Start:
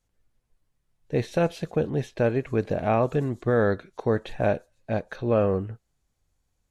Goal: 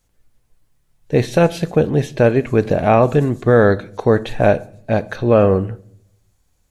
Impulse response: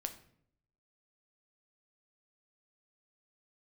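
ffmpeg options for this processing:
-filter_complex "[0:a]asplit=2[a][b];[1:a]atrim=start_sample=2205,highshelf=f=5.8k:g=10.5[c];[b][c]afir=irnorm=-1:irlink=0,volume=-5dB[d];[a][d]amix=inputs=2:normalize=0,volume=6.5dB"

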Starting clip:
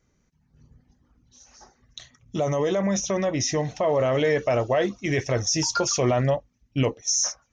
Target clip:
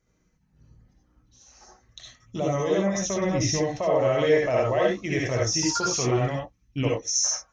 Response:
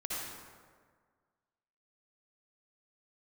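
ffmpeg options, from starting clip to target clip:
-filter_complex "[0:a]asettb=1/sr,asplit=3[a][b][c];[a]atrim=end=5.434[d];[b]atrim=start=5.43:end=6.84,asetpts=PTS-STARTPTS,afade=t=in:d=0.004:c=qsin,afade=t=out:st=1.406:d=0.004:c=qsin,equalizer=f=580:t=o:w=0.4:g=-10.5[e];[c]atrim=start=6.836[f];[d][e]acrossfade=d=0.004:c1=hsin:c2=qsin[g];[g][f]acrossfade=d=0.004:c1=qsin:c2=hsin[h];[1:a]atrim=start_sample=2205,atrim=end_sample=4410[i];[h][i]afir=irnorm=-1:irlink=0,asettb=1/sr,asplit=3[j][k][l];[j]atrim=end=2.994[m];[k]atrim=start=2.99:end=3.58,asetpts=PTS-STARTPTS,afade=t=in:d=0.004:c=qsin,afade=t=out:st=0.586:d=0.004:c=qsin,asubboost=boost=10.5:cutoff=220[n];[l]atrim=start=3.576[o];[m][n]acrossfade=d=0.004:c1=hsin:c2=qsin[p];[p][o]acrossfade=d=0.004:c1=qsin:c2=hsin"

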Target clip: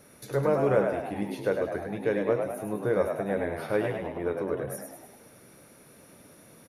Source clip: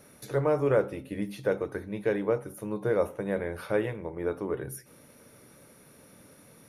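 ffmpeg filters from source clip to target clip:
-filter_complex "[0:a]asplit=8[a][b][c][d][e][f][g][h];[b]adelay=103,afreqshift=67,volume=-5.5dB[i];[c]adelay=206,afreqshift=134,volume=-11dB[j];[d]adelay=309,afreqshift=201,volume=-16.5dB[k];[e]adelay=412,afreqshift=268,volume=-22dB[l];[f]adelay=515,afreqshift=335,volume=-27.6dB[m];[g]adelay=618,afreqshift=402,volume=-33.1dB[n];[h]adelay=721,afreqshift=469,volume=-38.6dB[o];[a][i][j][k][l][m][n][o]amix=inputs=8:normalize=0"

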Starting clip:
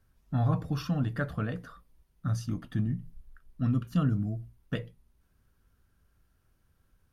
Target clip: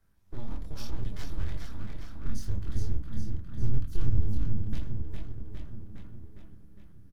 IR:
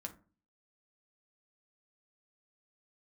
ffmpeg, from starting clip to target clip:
-filter_complex "[0:a]alimiter=limit=-23.5dB:level=0:latency=1:release=29,aecho=1:1:409|818|1227|1636|2045|2454|2863|3272:0.562|0.321|0.183|0.104|0.0594|0.0338|0.0193|0.011,flanger=delay=22.5:depth=3.5:speed=0.76,aeval=exprs='abs(val(0))':c=same,acrossover=split=160|3000[a][b][c];[b]acompressor=threshold=-57dB:ratio=2[d];[a][d][c]amix=inputs=3:normalize=0,asplit=2[e][f];[1:a]atrim=start_sample=2205[g];[f][g]afir=irnorm=-1:irlink=0,volume=2.5dB[h];[e][h]amix=inputs=2:normalize=0,asubboost=boost=6:cutoff=200,bandreject=f=2.8k:w=18,volume=-3dB"

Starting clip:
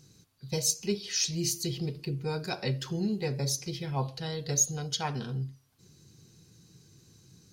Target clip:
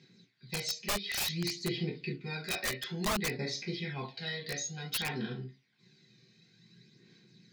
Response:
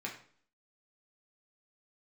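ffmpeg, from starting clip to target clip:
-filter_complex "[0:a]highpass=260,equalizer=f=320:t=q:w=4:g=-7,equalizer=f=570:t=q:w=4:g=-9,equalizer=f=830:t=q:w=4:g=-7,equalizer=f=1.2k:t=q:w=4:g=-10,equalizer=f=2k:t=q:w=4:g=8,equalizer=f=3.7k:t=q:w=4:g=5,lowpass=f=5.3k:w=0.5412,lowpass=f=5.3k:w=1.3066[a];[1:a]atrim=start_sample=2205,afade=t=out:st=0.13:d=0.01,atrim=end_sample=6174[b];[a][b]afir=irnorm=-1:irlink=0,aeval=exprs='(mod(21.1*val(0)+1,2)-1)/21.1':c=same,aphaser=in_gain=1:out_gain=1:delay=1.7:decay=0.41:speed=0.56:type=sinusoidal"

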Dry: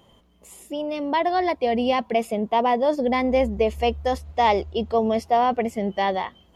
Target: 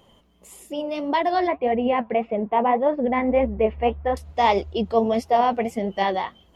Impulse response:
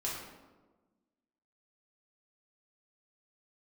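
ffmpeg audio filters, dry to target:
-filter_complex "[0:a]asettb=1/sr,asplit=3[a][b][c];[a]atrim=end=1.474[d];[b]atrim=start=1.47:end=4.17,asetpts=PTS-STARTPTS,afade=t=in:d=0.004:c=qsin,afade=t=out:st=2.696:d=0.004:c=qsin,lowpass=f=2.4k:w=0.5412,lowpass=f=2.4k:w=1.3066[e];[c]atrim=start=4.166[f];[d][e]acrossfade=d=0.004:c1=hsin:c2=qsin[g];[g][f]acrossfade=d=0.004:c1=qsin:c2=hsin,flanger=delay=1.4:depth=8:regen=59:speed=1.7:shape=triangular,volume=4.5dB"

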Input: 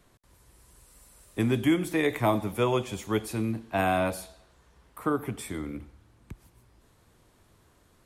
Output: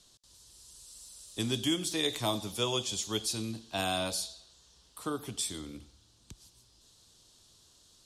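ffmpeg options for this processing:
-af "aexciter=amount=11.9:drive=7.2:freq=3.3k,lowpass=4.9k,volume=-8dB"

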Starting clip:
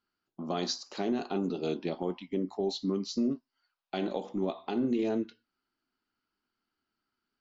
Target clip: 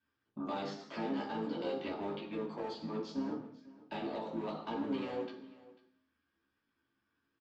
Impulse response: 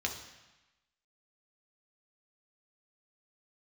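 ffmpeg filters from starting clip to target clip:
-filter_complex "[0:a]lowpass=3.9k,bandreject=f=46.84:t=h:w=4,bandreject=f=93.68:t=h:w=4,bandreject=f=140.52:t=h:w=4,bandreject=f=187.36:t=h:w=4,bandreject=f=234.2:t=h:w=4,bandreject=f=281.04:t=h:w=4,bandreject=f=327.88:t=h:w=4,bandreject=f=374.72:t=h:w=4,bandreject=f=421.56:t=h:w=4,bandreject=f=468.4:t=h:w=4,bandreject=f=515.24:t=h:w=4,bandreject=f=562.08:t=h:w=4,bandreject=f=608.92:t=h:w=4,asplit=2[a][b];[b]aeval=exprs='0.0282*(abs(mod(val(0)/0.0282+3,4)-2)-1)':c=same,volume=-9.5dB[c];[a][c]amix=inputs=2:normalize=0,acrossover=split=550|2300[d][e][f];[d]acompressor=threshold=-44dB:ratio=4[g];[e]acompressor=threshold=-41dB:ratio=4[h];[f]acompressor=threshold=-51dB:ratio=4[i];[g][h][i]amix=inputs=3:normalize=0,flanger=delay=15:depth=2.1:speed=2.1,asetrate=49501,aresample=44100,atempo=0.890899,aemphasis=mode=reproduction:type=50kf,asplit=2[j][k];[k]asetrate=33038,aresample=44100,atempo=1.33484,volume=-7dB[l];[j][l]amix=inputs=2:normalize=0,aecho=1:1:494:0.1[m];[1:a]atrim=start_sample=2205,afade=t=out:st=0.37:d=0.01,atrim=end_sample=16758,asetrate=52920,aresample=44100[n];[m][n]afir=irnorm=-1:irlink=0,volume=2dB"

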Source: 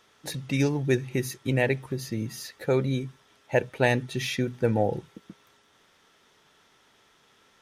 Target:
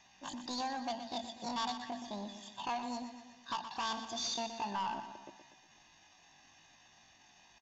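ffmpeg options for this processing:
-filter_complex "[0:a]lowshelf=f=160:g=3,aecho=1:1:2:0.72,alimiter=limit=-14dB:level=0:latency=1:release=368,acrossover=split=450|3000[a][b][c];[a]acompressor=threshold=-49dB:ratio=2[d];[d][b][c]amix=inputs=3:normalize=0,aresample=8000,asoftclip=type=tanh:threshold=-30dB,aresample=44100,asetrate=80880,aresample=44100,atempo=0.545254,aecho=1:1:122|244|366|488|610|732:0.316|0.164|0.0855|0.0445|0.0231|0.012,volume=-2.5dB"

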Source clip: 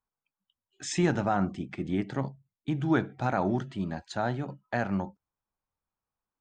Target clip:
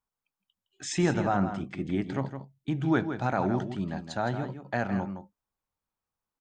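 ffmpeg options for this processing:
-filter_complex "[0:a]asplit=2[a][b];[b]adelay=163.3,volume=-9dB,highshelf=f=4k:g=-3.67[c];[a][c]amix=inputs=2:normalize=0"

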